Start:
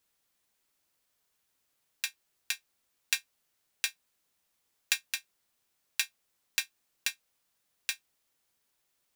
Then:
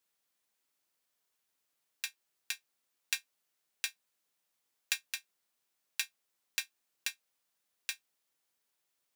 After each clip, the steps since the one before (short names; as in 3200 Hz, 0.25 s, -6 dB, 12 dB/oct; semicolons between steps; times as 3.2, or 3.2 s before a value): HPF 200 Hz 6 dB/oct; gain -4.5 dB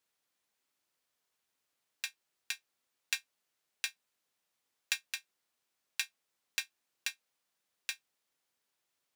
high shelf 8700 Hz -6.5 dB; gain +1 dB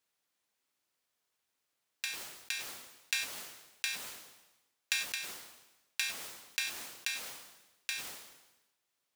sustainer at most 57 dB/s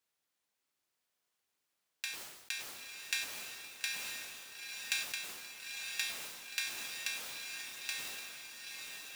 diffused feedback echo 0.924 s, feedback 60%, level -4.5 dB; gain -2.5 dB